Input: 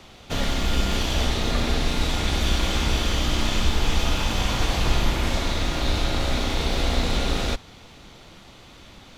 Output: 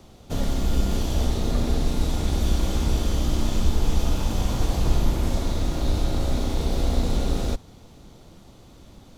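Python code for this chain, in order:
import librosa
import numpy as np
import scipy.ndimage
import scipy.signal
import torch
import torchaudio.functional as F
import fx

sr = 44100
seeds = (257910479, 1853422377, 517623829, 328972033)

y = fx.peak_eq(x, sr, hz=2300.0, db=-14.0, octaves=2.6)
y = y * librosa.db_to_amplitude(1.5)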